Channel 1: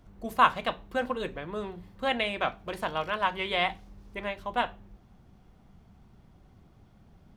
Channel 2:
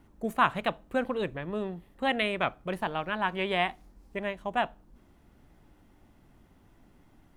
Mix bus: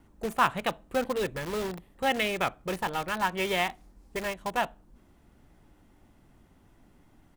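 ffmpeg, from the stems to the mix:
ffmpeg -i stem1.wav -i stem2.wav -filter_complex "[0:a]acompressor=threshold=-33dB:ratio=8,acrusher=bits=5:mix=0:aa=0.000001,volume=-0.5dB[link_01];[1:a]equalizer=frequency=8100:width_type=o:width=0.77:gain=3,adelay=0.6,volume=0dB[link_02];[link_01][link_02]amix=inputs=2:normalize=0" out.wav

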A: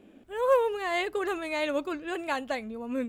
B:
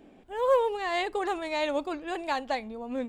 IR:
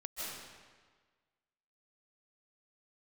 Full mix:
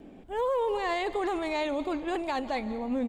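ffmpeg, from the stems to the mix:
-filter_complex "[0:a]volume=-19.5dB,asplit=2[link_01][link_02];[link_02]volume=-4.5dB[link_03];[1:a]lowshelf=frequency=410:gain=7.5,adelay=1.1,volume=0dB,asplit=2[link_04][link_05];[link_05]volume=-15.5dB[link_06];[2:a]atrim=start_sample=2205[link_07];[link_03][link_06]amix=inputs=2:normalize=0[link_08];[link_08][link_07]afir=irnorm=-1:irlink=0[link_09];[link_01][link_04][link_09]amix=inputs=3:normalize=0,alimiter=limit=-22dB:level=0:latency=1:release=10"

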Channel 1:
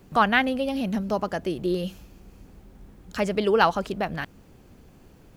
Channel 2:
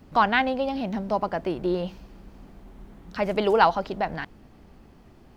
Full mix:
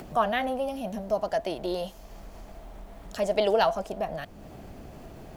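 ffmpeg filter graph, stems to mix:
ffmpeg -i stem1.wav -i stem2.wav -filter_complex "[0:a]volume=-1.5dB[link_01];[1:a]volume=-1,volume=-2.5dB[link_02];[link_01][link_02]amix=inputs=2:normalize=0,equalizer=frequency=650:width=3.9:gain=10.5,acompressor=mode=upward:threshold=-36dB:ratio=2.5" out.wav

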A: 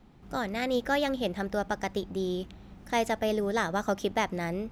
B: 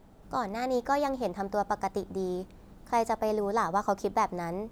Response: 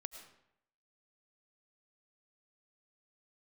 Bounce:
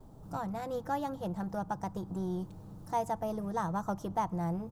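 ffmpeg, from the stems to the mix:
-filter_complex "[0:a]equalizer=frequency=125:width_type=o:width=1:gain=12,equalizer=frequency=250:width_type=o:width=1:gain=-4,equalizer=frequency=500:width_type=o:width=1:gain=-5,equalizer=frequency=1000:width_type=o:width=1:gain=12,equalizer=frequency=4000:width_type=o:width=1:gain=-8,volume=-7dB,asplit=2[link_01][link_02];[link_02]volume=-15.5dB[link_03];[1:a]acrossover=split=250[link_04][link_05];[link_05]acompressor=threshold=-38dB:ratio=6[link_06];[link_04][link_06]amix=inputs=2:normalize=0,asoftclip=type=tanh:threshold=-38dB,adelay=4.9,volume=1.5dB[link_07];[2:a]atrim=start_sample=2205[link_08];[link_03][link_08]afir=irnorm=-1:irlink=0[link_09];[link_01][link_07][link_09]amix=inputs=3:normalize=0,equalizer=frequency=2100:width=1:gain=-15"

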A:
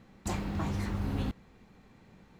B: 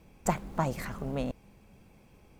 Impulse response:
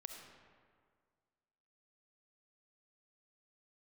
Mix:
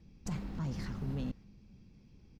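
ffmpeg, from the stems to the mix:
-filter_complex "[0:a]volume=-11dB[link_01];[1:a]firequalizer=gain_entry='entry(210,0);entry(640,-18);entry(5200,0);entry(8800,-28)':delay=0.05:min_phase=1,volume=-1,adelay=3.9,volume=0.5dB,asplit=2[link_02][link_03];[link_03]apad=whole_len=105465[link_04];[link_01][link_04]sidechaingate=range=-10dB:threshold=-48dB:ratio=16:detection=peak[link_05];[link_05][link_02]amix=inputs=2:normalize=0,alimiter=level_in=5dB:limit=-24dB:level=0:latency=1:release=18,volume=-5dB"

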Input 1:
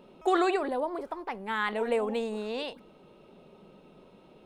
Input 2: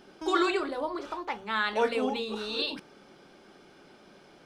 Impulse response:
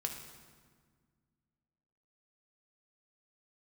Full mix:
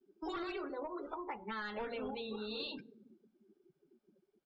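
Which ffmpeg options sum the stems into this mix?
-filter_complex "[0:a]volume=-12.5dB[link_01];[1:a]asoftclip=type=hard:threshold=-25.5dB,lowshelf=frequency=94:gain=7,adelay=11,volume=-4dB,asplit=2[link_02][link_03];[link_03]volume=-9dB[link_04];[2:a]atrim=start_sample=2205[link_05];[link_04][link_05]afir=irnorm=-1:irlink=0[link_06];[link_01][link_02][link_06]amix=inputs=3:normalize=0,afftdn=noise_reduction=33:noise_floor=-41,acompressor=threshold=-39dB:ratio=6"

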